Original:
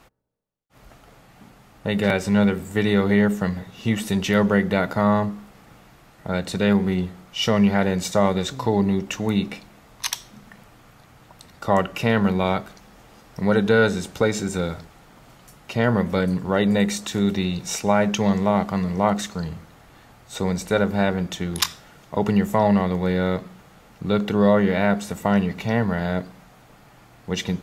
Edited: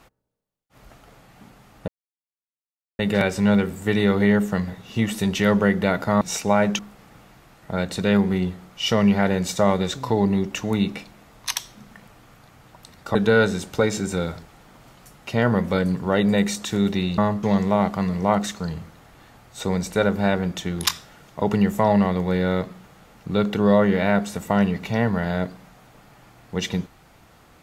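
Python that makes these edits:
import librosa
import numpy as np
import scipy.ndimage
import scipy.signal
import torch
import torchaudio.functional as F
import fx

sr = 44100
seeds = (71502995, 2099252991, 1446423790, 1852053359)

y = fx.edit(x, sr, fx.insert_silence(at_s=1.88, length_s=1.11),
    fx.swap(start_s=5.1, length_s=0.25, other_s=17.6, other_length_s=0.58),
    fx.cut(start_s=11.71, length_s=1.86), tone=tone)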